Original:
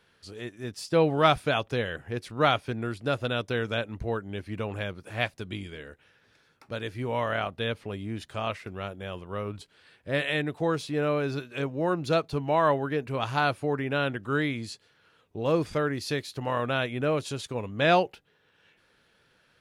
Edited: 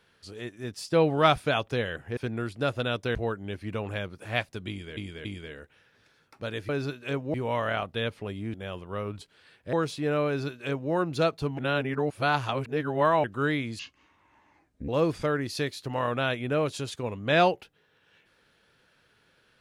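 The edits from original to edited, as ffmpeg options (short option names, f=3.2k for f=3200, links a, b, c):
-filter_complex "[0:a]asplit=13[a][b][c][d][e][f][g][h][i][j][k][l][m];[a]atrim=end=2.172[n];[b]atrim=start=2.618:end=3.602[o];[c]atrim=start=3.998:end=5.822[p];[d]atrim=start=5.538:end=5.822[q];[e]atrim=start=5.538:end=6.982[r];[f]atrim=start=11.178:end=11.832[s];[g]atrim=start=6.978:end=8.182[t];[h]atrim=start=8.938:end=10.132[u];[i]atrim=start=10.638:end=12.492[v];[j]atrim=start=12.488:end=14.152,asetpts=PTS-STARTPTS,areverse[w];[k]atrim=start=14.148:end=14.704[x];[l]atrim=start=14.7:end=15.4,asetpts=PTS-STARTPTS,asetrate=28224,aresample=44100,atrim=end_sample=48234,asetpts=PTS-STARTPTS[y];[m]atrim=start=15.396[z];[n][o]acrossfade=d=0.004:c1=hsin:c2=hsin[aa];[aa][p]acrossfade=d=0.004:c1=hsin:c2=hsin[ab];[ab][q]acrossfade=d=0.004:c1=hsin:c2=hsin[ac];[ac][r]acrossfade=d=0.004:c1=hsin:c2=hsin[ad];[ad][s]acrossfade=d=0.004:c1=hsin:c2=hsin[ae];[ae][t]acrossfade=d=0.004:c1=hsin:c2=hsin[af];[af][u]acrossfade=d=0.004:c1=hsin:c2=hsin[ag];[ag][v]acrossfade=d=0.004:c1=hsin:c2=hsin[ah];[ah][w]acrossfade=d=0.004:c1=hsin:c2=hsin[ai];[ai][x]acrossfade=d=0.004:c1=hsin:c2=hsin[aj];[aj][y]acrossfade=d=0.004:c1=hsin:c2=hsin[ak];[ak][z]acrossfade=d=0.004:c1=hsin:c2=hsin"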